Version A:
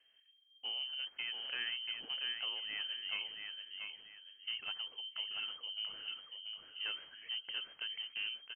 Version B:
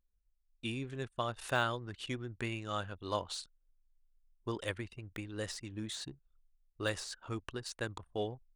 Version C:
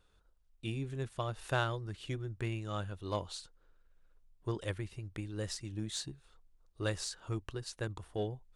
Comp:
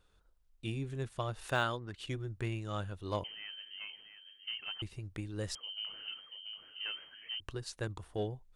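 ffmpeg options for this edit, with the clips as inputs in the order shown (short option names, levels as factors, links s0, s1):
-filter_complex "[0:a]asplit=2[s0][s1];[2:a]asplit=4[s2][s3][s4][s5];[s2]atrim=end=1.63[s6];[1:a]atrim=start=1.39:end=2.17[s7];[s3]atrim=start=1.93:end=3.242[s8];[s0]atrim=start=3.238:end=4.822[s9];[s4]atrim=start=4.818:end=5.552[s10];[s1]atrim=start=5.548:end=7.402[s11];[s5]atrim=start=7.398[s12];[s6][s7]acrossfade=d=0.24:c1=tri:c2=tri[s13];[s13][s8]acrossfade=d=0.24:c1=tri:c2=tri[s14];[s14][s9]acrossfade=d=0.004:c1=hsin:c2=hsin[s15];[s15][s10]acrossfade=d=0.004:c1=hsin:c2=hsin[s16];[s16][s11]acrossfade=d=0.004:c1=hsin:c2=hsin[s17];[s17][s12]acrossfade=d=0.004:c1=hsin:c2=hsin"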